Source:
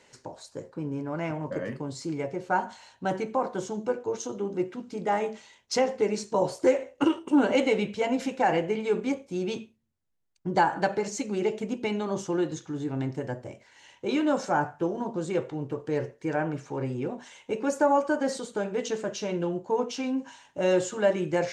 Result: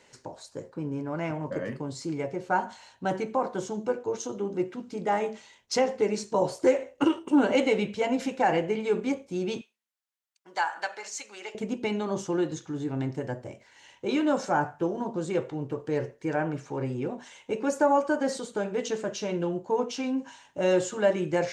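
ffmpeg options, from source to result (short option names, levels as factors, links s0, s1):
-filter_complex "[0:a]asettb=1/sr,asplit=3[s0][s1][s2];[s0]atrim=end=9.614[s3];[s1]atrim=start=9.61:end=11.55,asetpts=PTS-STARTPTS,afade=t=in:d=0.004:c=qsin,afade=t=out:st=1.936:d=0.004:c=qsin,highpass=1100[s4];[s2]atrim=start=11.546[s5];[s3][s4]acrossfade=d=0.004:c1=hsin:c2=qsin[s6];[s6][s5]acrossfade=d=0.004:c1=qsin:c2=hsin"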